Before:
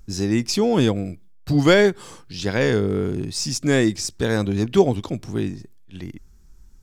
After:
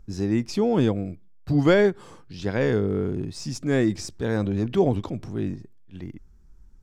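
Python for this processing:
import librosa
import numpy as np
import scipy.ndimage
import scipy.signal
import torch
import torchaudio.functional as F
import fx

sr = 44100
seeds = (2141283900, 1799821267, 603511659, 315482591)

y = fx.high_shelf(x, sr, hz=2700.0, db=-12.0)
y = fx.transient(y, sr, attack_db=-4, sustain_db=4, at=(3.54, 5.54), fade=0.02)
y = y * 10.0 ** (-2.5 / 20.0)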